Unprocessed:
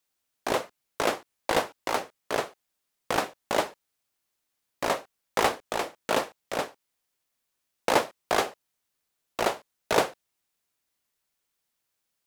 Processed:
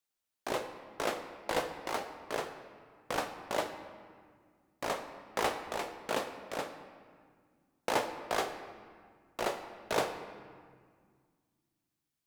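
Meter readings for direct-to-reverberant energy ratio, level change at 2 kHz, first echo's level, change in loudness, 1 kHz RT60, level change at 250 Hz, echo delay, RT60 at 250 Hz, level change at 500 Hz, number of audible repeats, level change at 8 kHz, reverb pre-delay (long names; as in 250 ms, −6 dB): 6.5 dB, −7.0 dB, no echo audible, −7.5 dB, 1.9 s, −7.0 dB, no echo audible, 2.7 s, −7.0 dB, no echo audible, −7.5 dB, 14 ms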